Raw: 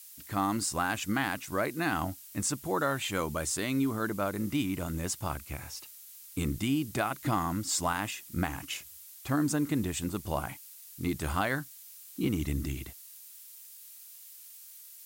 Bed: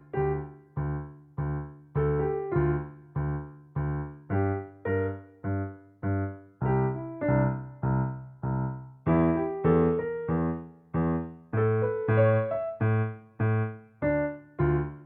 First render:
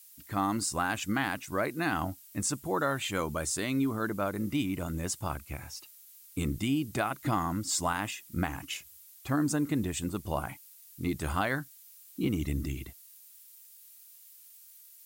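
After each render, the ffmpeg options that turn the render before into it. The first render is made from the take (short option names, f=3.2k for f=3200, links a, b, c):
-af "afftdn=nr=6:nf=-50"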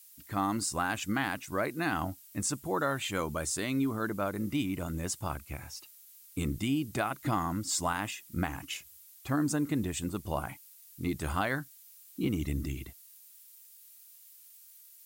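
-af "volume=-1dB"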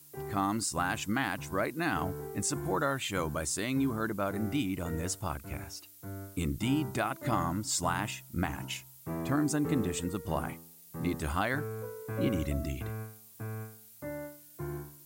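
-filter_complex "[1:a]volume=-13.5dB[a];[0:a][a]amix=inputs=2:normalize=0"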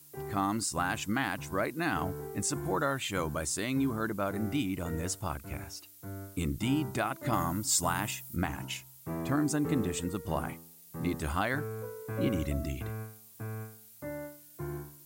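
-filter_complex "[0:a]asettb=1/sr,asplit=3[a][b][c];[a]atrim=end=7.334[d];[b]atrim=start=7.33:end=8.36,asetpts=PTS-STARTPTS,afade=t=in:d=0.004:c=qsin,afade=t=out:st=1.026:d=0.004:c=qsin,highshelf=f=8.1k:g=10[e];[c]atrim=start=8.356[f];[d][e]acrossfade=d=0.004:c1=hsin:c2=qsin[g];[g][f]acrossfade=d=0.004:c1=qsin:c2=hsin"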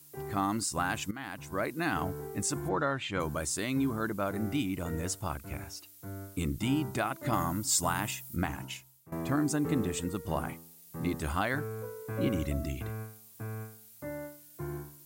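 -filter_complex "[0:a]asplit=3[a][b][c];[a]afade=t=out:st=2.68:d=0.02[d];[b]lowpass=3.9k,afade=t=in:st=2.68:d=0.02,afade=t=out:st=3.19:d=0.02[e];[c]afade=t=in:st=3.19:d=0.02[f];[d][e][f]amix=inputs=3:normalize=0,asplit=3[g][h][i];[g]atrim=end=1.11,asetpts=PTS-STARTPTS,afade=t=out:st=1.106:d=0.004:c=hsin:silence=0.177828[j];[h]atrim=start=1.11:end=9.12,asetpts=PTS-STARTPTS,afade=t=in:d=0.6:silence=0.177828,afade=t=out:st=7.4:d=0.61:silence=0.125893[k];[i]atrim=start=9.12,asetpts=PTS-STARTPTS,afade=t=in:d=0.004:c=hsin:silence=0.125893[l];[j][k][l]concat=n=3:v=0:a=1"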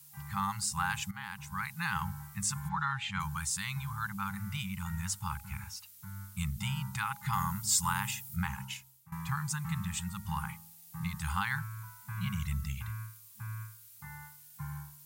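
-af "afftfilt=real='re*(1-between(b*sr/4096,210,790))':imag='im*(1-between(b*sr/4096,210,790))':win_size=4096:overlap=0.75,bandreject=f=103.2:t=h:w=4,bandreject=f=206.4:t=h:w=4,bandreject=f=309.6:t=h:w=4,bandreject=f=412.8:t=h:w=4,bandreject=f=516:t=h:w=4,bandreject=f=619.2:t=h:w=4,bandreject=f=722.4:t=h:w=4,bandreject=f=825.6:t=h:w=4"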